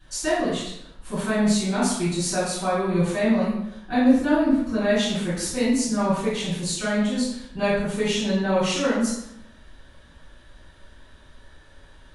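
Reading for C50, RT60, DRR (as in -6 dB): 0.5 dB, 0.80 s, -13.0 dB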